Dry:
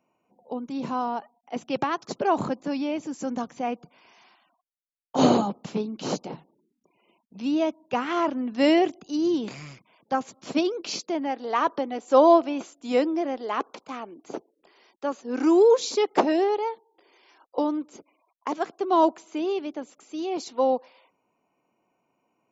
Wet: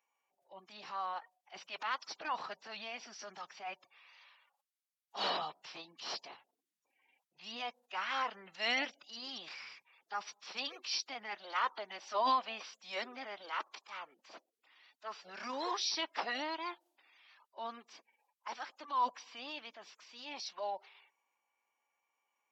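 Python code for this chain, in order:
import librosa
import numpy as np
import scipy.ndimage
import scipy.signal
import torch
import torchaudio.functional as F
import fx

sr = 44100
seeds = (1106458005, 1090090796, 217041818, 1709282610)

y = scipy.signal.sosfilt(scipy.signal.butter(2, 1400.0, 'highpass', fs=sr, output='sos'), x)
y = fx.transient(y, sr, attack_db=-6, sustain_db=1)
y = fx.pitch_keep_formants(y, sr, semitones=-4.5)
y = y * 10.0 ** (-1.0 / 20.0)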